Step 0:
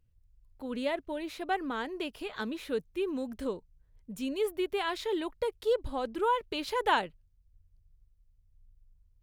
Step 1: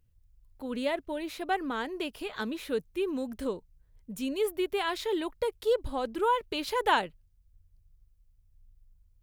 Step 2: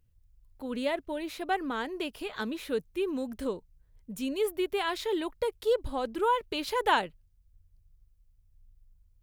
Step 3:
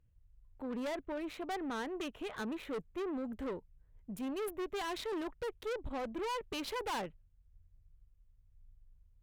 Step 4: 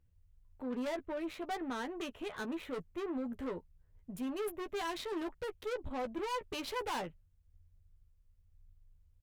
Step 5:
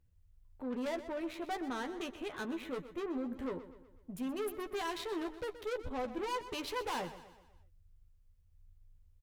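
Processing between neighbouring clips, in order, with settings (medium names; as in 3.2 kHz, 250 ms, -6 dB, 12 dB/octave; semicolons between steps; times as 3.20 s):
treble shelf 9.8 kHz +6 dB; trim +1.5 dB
no audible change
local Wiener filter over 9 samples; valve stage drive 35 dB, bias 0.35
doubling 12 ms -6.5 dB; trim -1 dB
feedback delay 124 ms, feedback 49%, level -13.5 dB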